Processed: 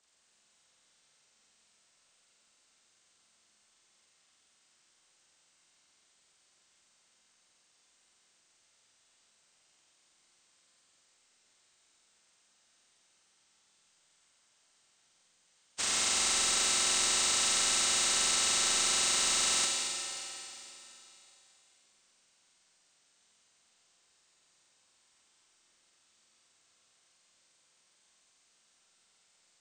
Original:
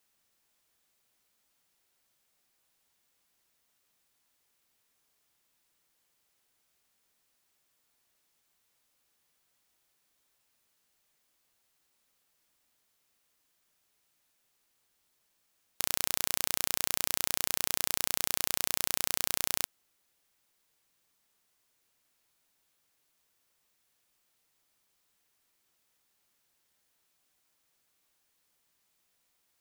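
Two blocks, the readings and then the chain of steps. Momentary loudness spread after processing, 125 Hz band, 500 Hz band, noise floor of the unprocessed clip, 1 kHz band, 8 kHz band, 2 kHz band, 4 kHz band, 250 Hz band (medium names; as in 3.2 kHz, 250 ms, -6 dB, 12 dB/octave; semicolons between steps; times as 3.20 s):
10 LU, no reading, +2.5 dB, -75 dBFS, +5.5 dB, +7.5 dB, +5.0 dB, +8.0 dB, +2.0 dB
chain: frequency axis rescaled in octaves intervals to 80%; in parallel at -9.5 dB: saturation -35.5 dBFS, distortion -10 dB; on the sum: Schroeder reverb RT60 3.2 s, combs from 29 ms, DRR -1 dB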